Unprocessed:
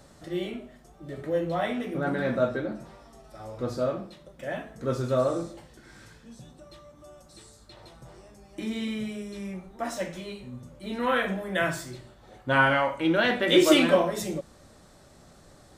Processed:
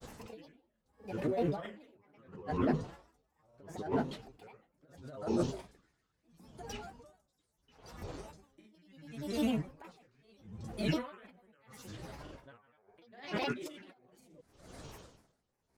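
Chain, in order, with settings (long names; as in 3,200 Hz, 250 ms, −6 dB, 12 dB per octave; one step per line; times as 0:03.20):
compressor whose output falls as the input rises −32 dBFS, ratio −1
granular cloud, spray 27 ms, pitch spread up and down by 7 semitones
tremolo with a sine in dB 0.74 Hz, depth 36 dB
level +2 dB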